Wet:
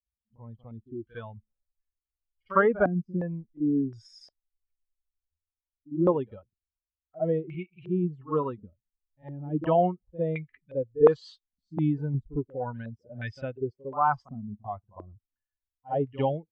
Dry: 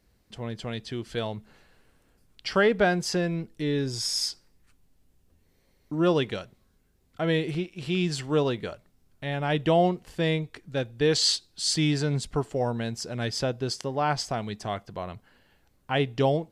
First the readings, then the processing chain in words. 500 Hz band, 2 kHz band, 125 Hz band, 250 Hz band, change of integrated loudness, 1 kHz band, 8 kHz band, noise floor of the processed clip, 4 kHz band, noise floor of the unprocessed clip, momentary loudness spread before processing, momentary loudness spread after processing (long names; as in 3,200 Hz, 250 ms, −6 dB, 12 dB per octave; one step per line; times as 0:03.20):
−0.5 dB, −6.5 dB, −3.5 dB, −1.5 dB, −1.0 dB, +0.5 dB, below −30 dB, below −85 dBFS, below −20 dB, −66 dBFS, 13 LU, 17 LU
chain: spectral dynamics exaggerated over time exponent 2
backwards echo 54 ms −16.5 dB
low-pass on a step sequencer 2.8 Hz 250–2,100 Hz